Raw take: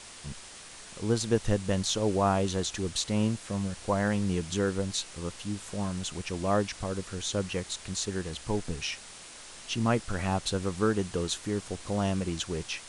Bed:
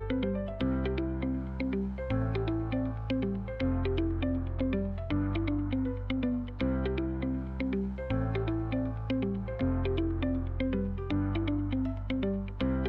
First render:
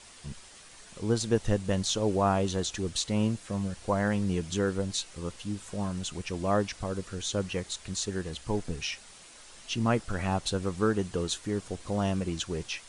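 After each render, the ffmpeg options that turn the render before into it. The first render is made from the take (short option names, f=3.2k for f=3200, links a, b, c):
-af "afftdn=nr=6:nf=-47"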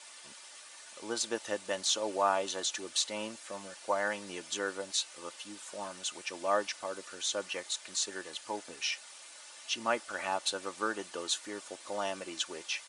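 -af "highpass=610,aecho=1:1:3.4:0.43"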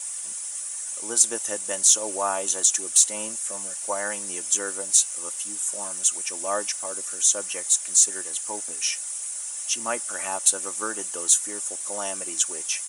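-filter_complex "[0:a]aexciter=amount=10.1:drive=6.3:freq=6.4k,asplit=2[a][b];[b]asoftclip=type=tanh:threshold=-15dB,volume=-11dB[c];[a][c]amix=inputs=2:normalize=0"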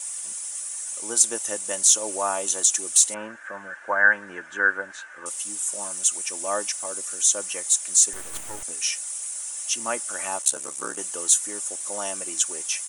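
-filter_complex "[0:a]asettb=1/sr,asplit=3[a][b][c];[a]atrim=end=3.144[d];[b]atrim=start=3.14:end=5.26,asetpts=PTS-STARTPTS,afade=t=in:d=0.004:c=qsin,afade=t=out:st=2.116:d=0.004:c=qsin,lowpass=f=1.6k:t=q:w=13[e];[c]atrim=start=5.256[f];[d][e]acrossfade=d=0.004:c1=hsin:c2=qsin[g];[g][f]acrossfade=d=0.004:c1=qsin:c2=hsin,asettb=1/sr,asplit=3[h][i][j];[h]atrim=end=8.134[k];[i]atrim=start=8.13:end=8.63,asetpts=PTS-STARTPTS,afade=t=in:d=0.004:c=qsin,afade=t=out:st=0.496:d=0.004:c=qsin,aeval=exprs='max(val(0),0)':c=same[l];[j]atrim=start=8.626[m];[k][l]acrossfade=d=0.004:c1=hsin:c2=qsin[n];[n][m]acrossfade=d=0.004:c1=qsin:c2=hsin,asplit=3[o][p][q];[o]afade=t=out:st=10.41:d=0.02[r];[p]aeval=exprs='val(0)*sin(2*PI*34*n/s)':c=same,afade=t=in:st=10.41:d=0.02,afade=t=out:st=10.96:d=0.02[s];[q]afade=t=in:st=10.96:d=0.02[t];[r][s][t]amix=inputs=3:normalize=0"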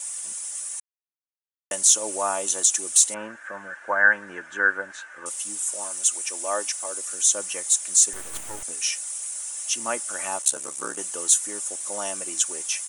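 -filter_complex "[0:a]asettb=1/sr,asplit=3[a][b][c];[a]atrim=end=5.644[d];[b]atrim=start=5.64:end=7.14,asetpts=PTS-STARTPTS,afade=t=in:d=0.004:c=qsin,afade=t=out:st=1.496:d=0.004:c=qsin,highpass=290[e];[c]atrim=start=7.136[f];[d][e]acrossfade=d=0.004:c1=hsin:c2=qsin[g];[g][f]acrossfade=d=0.004:c1=qsin:c2=hsin,asplit=3[h][i][j];[h]atrim=end=0.8,asetpts=PTS-STARTPTS,afade=t=out:st=0.796:d=0.004:c=hsin[k];[i]atrim=start=0.8:end=1.71,asetpts=PTS-STARTPTS,volume=0[l];[j]atrim=start=1.71,asetpts=PTS-STARTPTS,afade=t=in:d=0.004:c=hsin[m];[k][l][m]concat=n=3:v=0:a=1"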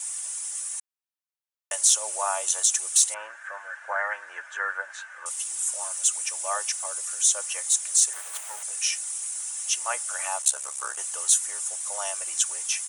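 -af "afftfilt=real='re*lt(hypot(re,im),0.501)':imag='im*lt(hypot(re,im),0.501)':win_size=1024:overlap=0.75,highpass=f=650:w=0.5412,highpass=f=650:w=1.3066"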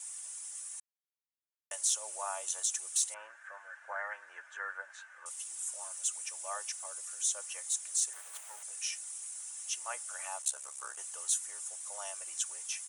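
-af "volume=-11dB"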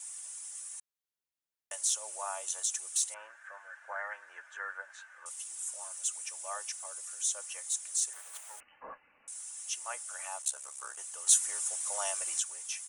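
-filter_complex "[0:a]asettb=1/sr,asplit=3[a][b][c];[a]atrim=end=8.604[d];[b]atrim=start=8.6:end=9.28,asetpts=PTS-STARTPTS,afade=t=in:d=0.004:c=qsin,afade=t=out:st=0.676:d=0.004:c=qsin,lowpass=f=3k:t=q:w=0.5098,lowpass=f=3k:t=q:w=0.6013,lowpass=f=3k:t=q:w=0.9,lowpass=f=3k:t=q:w=2.563,afreqshift=-3500[e];[c]atrim=start=9.276[f];[d][e]acrossfade=d=0.004:c1=hsin:c2=qsin[g];[g][f]acrossfade=d=0.004:c1=qsin:c2=hsin,asplit=3[h][i][j];[h]atrim=end=11.272[k];[i]atrim=start=11.268:end=12.402,asetpts=PTS-STARTPTS,volume=7.5dB[l];[j]atrim=start=12.398[m];[k][l]acrossfade=d=0.004:c1=hsin:c2=hsin[n];[n][m]acrossfade=d=0.004:c1=hsin:c2=hsin"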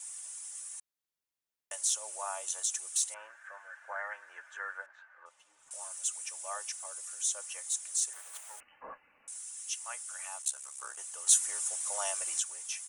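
-filter_complex "[0:a]asettb=1/sr,asplit=3[a][b][c];[a]atrim=end=4.864[d];[b]atrim=start=4.86:end=5.71,asetpts=PTS-STARTPTS,afade=t=in:d=0.004:c=qsin,afade=t=out:st=0.846:d=0.004:c=qsin,adynamicsmooth=sensitivity=2:basefreq=1.8k[e];[c]atrim=start=5.706[f];[d][e]acrossfade=d=0.004:c1=hsin:c2=qsin[g];[g][f]acrossfade=d=0.004:c1=qsin:c2=hsin,asettb=1/sr,asplit=3[h][i][j];[h]atrim=end=9.384[k];[i]atrim=start=9.38:end=10.79,asetpts=PTS-STARTPTS,afade=t=in:d=0.004:c=qsin,afade=t=out:st=1.406:d=0.004:c=qsin,highpass=f=1.2k:p=1[l];[j]atrim=start=10.786[m];[k][l]acrossfade=d=0.004:c1=hsin:c2=qsin[n];[n][m]acrossfade=d=0.004:c1=qsin:c2=hsin"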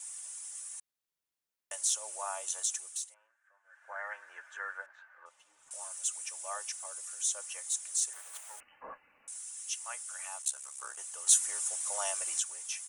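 -filter_complex "[0:a]asplit=3[a][b][c];[a]atrim=end=3.16,asetpts=PTS-STARTPTS,afade=t=out:st=2.68:d=0.48:silence=0.0891251[d];[b]atrim=start=3.16:end=3.63,asetpts=PTS-STARTPTS,volume=-21dB[e];[c]atrim=start=3.63,asetpts=PTS-STARTPTS,afade=t=in:d=0.48:silence=0.0891251[f];[d][e][f]concat=n=3:v=0:a=1"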